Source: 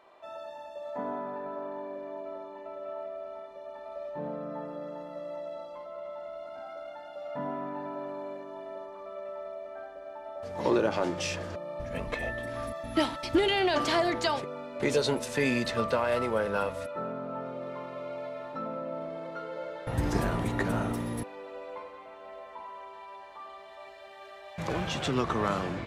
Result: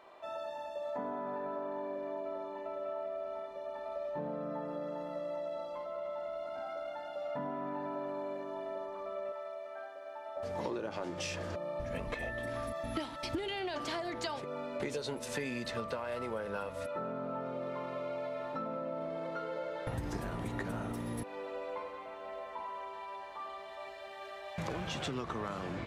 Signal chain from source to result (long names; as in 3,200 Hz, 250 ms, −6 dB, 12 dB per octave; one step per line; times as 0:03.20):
0:09.32–0:10.37: high-pass filter 890 Hz 6 dB per octave
downward compressor 8 to 1, threshold −36 dBFS, peak gain reduction 15.5 dB
level +1.5 dB